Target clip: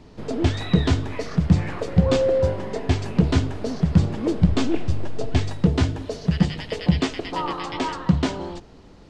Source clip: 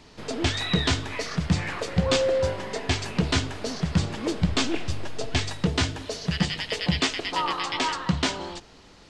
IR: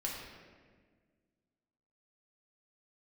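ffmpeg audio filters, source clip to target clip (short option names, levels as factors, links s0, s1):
-af "tiltshelf=f=920:g=7"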